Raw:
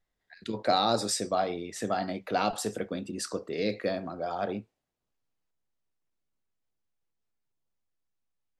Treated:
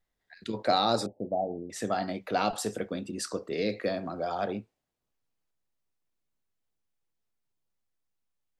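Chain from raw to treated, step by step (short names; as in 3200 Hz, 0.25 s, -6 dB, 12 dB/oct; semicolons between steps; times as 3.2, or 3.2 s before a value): 1.06–1.7 rippled Chebyshev low-pass 860 Hz, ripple 3 dB; 3.51–4.47 three-band squash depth 40%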